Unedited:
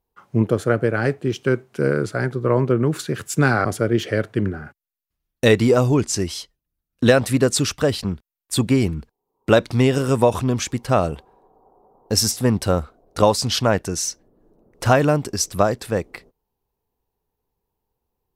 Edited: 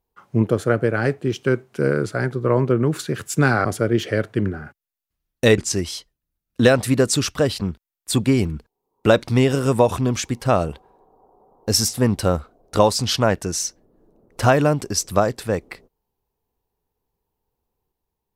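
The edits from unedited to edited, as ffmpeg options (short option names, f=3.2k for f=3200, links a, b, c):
-filter_complex "[0:a]asplit=2[a][b];[a]atrim=end=5.582[c];[b]atrim=start=6.008[d];[c][d]acrossfade=d=0.004:c1=hsin:c2=hsin"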